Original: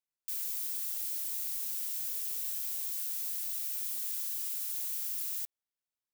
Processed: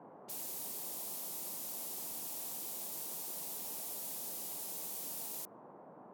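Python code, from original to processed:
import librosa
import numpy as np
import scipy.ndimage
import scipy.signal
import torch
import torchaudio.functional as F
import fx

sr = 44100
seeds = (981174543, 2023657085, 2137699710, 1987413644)

y = fx.env_lowpass(x, sr, base_hz=1200.0, full_db=-37.5)
y = fx.dmg_noise_band(y, sr, seeds[0], low_hz=150.0, high_hz=970.0, level_db=-52.0)
y = y * 10.0 ** (-3.0 / 20.0)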